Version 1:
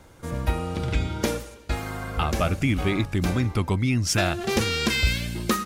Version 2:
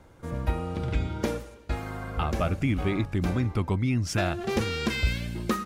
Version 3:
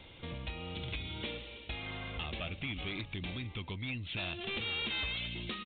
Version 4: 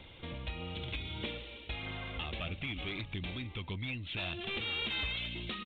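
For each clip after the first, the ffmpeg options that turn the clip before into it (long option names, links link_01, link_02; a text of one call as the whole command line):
ffmpeg -i in.wav -af "highshelf=frequency=2700:gain=-8.5,volume=-2.5dB" out.wav
ffmpeg -i in.wav -af "acompressor=threshold=-38dB:ratio=3,aexciter=amount=12.4:drive=3.8:freq=2300,aresample=8000,asoftclip=type=tanh:threshold=-30dB,aresample=44100,volume=-2dB" out.wav
ffmpeg -i in.wav -af "aphaser=in_gain=1:out_gain=1:delay=3.8:decay=0.23:speed=1.6:type=triangular" out.wav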